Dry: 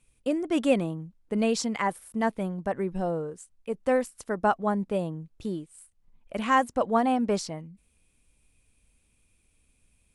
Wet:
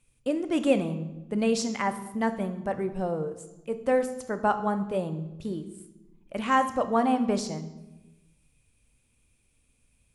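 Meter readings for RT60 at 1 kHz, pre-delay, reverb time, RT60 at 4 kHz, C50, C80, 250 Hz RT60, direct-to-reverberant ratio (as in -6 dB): 0.95 s, 3 ms, 1.1 s, 0.75 s, 12.0 dB, 14.0 dB, 1.4 s, 9.0 dB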